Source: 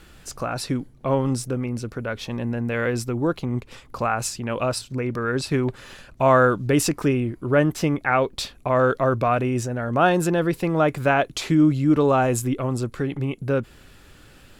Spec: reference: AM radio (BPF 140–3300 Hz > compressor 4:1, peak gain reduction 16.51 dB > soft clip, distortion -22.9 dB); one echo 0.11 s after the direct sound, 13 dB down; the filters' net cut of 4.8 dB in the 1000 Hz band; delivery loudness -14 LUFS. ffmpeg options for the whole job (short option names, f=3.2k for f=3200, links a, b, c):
-af "highpass=140,lowpass=3.3k,equalizer=f=1k:t=o:g=-7,aecho=1:1:110:0.224,acompressor=threshold=-33dB:ratio=4,asoftclip=threshold=-23.5dB,volume=22.5dB"